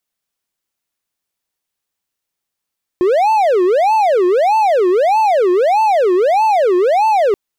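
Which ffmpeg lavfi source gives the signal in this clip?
ffmpeg -f lavfi -i "aevalsrc='0.422*(1-4*abs(mod((619.5*t-264.5/(2*PI*1.6)*sin(2*PI*1.6*t))+0.25,1)-0.5))':duration=4.33:sample_rate=44100" out.wav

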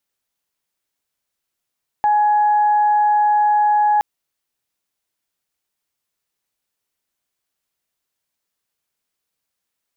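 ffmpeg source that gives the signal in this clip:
ffmpeg -f lavfi -i "aevalsrc='0.251*sin(2*PI*838*t)+0.0266*sin(2*PI*1676*t)':duration=1.97:sample_rate=44100" out.wav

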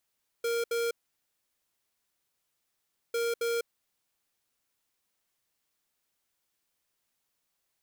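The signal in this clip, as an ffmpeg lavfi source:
ffmpeg -f lavfi -i "aevalsrc='0.0335*(2*lt(mod(467*t,1),0.5)-1)*clip(min(mod(mod(t,2.7),0.27),0.2-mod(mod(t,2.7),0.27))/0.005,0,1)*lt(mod(t,2.7),0.54)':duration=5.4:sample_rate=44100" out.wav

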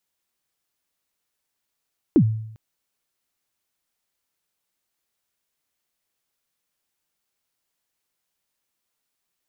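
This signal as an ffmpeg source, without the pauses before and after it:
ffmpeg -f lavfi -i "aevalsrc='0.355*pow(10,-3*t/0.74)*sin(2*PI*(370*0.074/log(110/370)*(exp(log(110/370)*min(t,0.074)/0.074)-1)+110*max(t-0.074,0)))':duration=0.4:sample_rate=44100" out.wav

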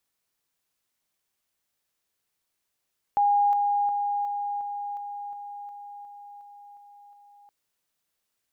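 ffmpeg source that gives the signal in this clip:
ffmpeg -f lavfi -i "aevalsrc='pow(10,(-18-3*floor(t/0.36))/20)*sin(2*PI*816*t)':duration=4.32:sample_rate=44100" out.wav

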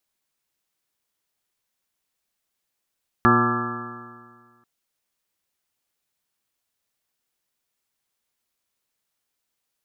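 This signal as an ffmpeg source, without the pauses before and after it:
ffmpeg -f lavfi -i "aevalsrc='0.0794*pow(10,-3*t/1.76)*sin(2*PI*118.17*t)+0.126*pow(10,-3*t/1.76)*sin(2*PI*237.36*t)+0.0944*pow(10,-3*t/1.76)*sin(2*PI*358.59*t)+0.0224*pow(10,-3*t/1.76)*sin(2*PI*482.83*t)+0.0178*pow(10,-3*t/1.76)*sin(2*PI*611.01*t)+0.0376*pow(10,-3*t/1.76)*sin(2*PI*744.04*t)+0.0531*pow(10,-3*t/1.76)*sin(2*PI*882.74*t)+0.0376*pow(10,-3*t/1.76)*sin(2*PI*1027.88*t)+0.158*pow(10,-3*t/1.76)*sin(2*PI*1180.16*t)+0.112*pow(10,-3*t/1.76)*sin(2*PI*1340.22*t)+0.0112*pow(10,-3*t/1.76)*sin(2*PI*1508.64*t)+0.0794*pow(10,-3*t/1.76)*sin(2*PI*1685.93*t)':duration=1.39:sample_rate=44100" out.wav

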